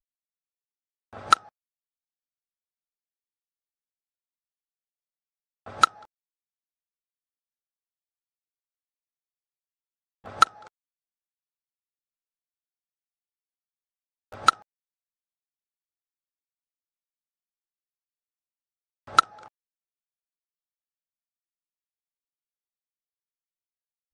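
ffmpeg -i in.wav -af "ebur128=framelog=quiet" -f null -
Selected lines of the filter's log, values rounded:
Integrated loudness:
  I:         -23.4 LUFS
  Threshold: -36.2 LUFS
Loudness range:
  LRA:         0.6 LU
  Threshold: -52.6 LUFS
  LRA low:   -32.4 LUFS
  LRA high:  -31.9 LUFS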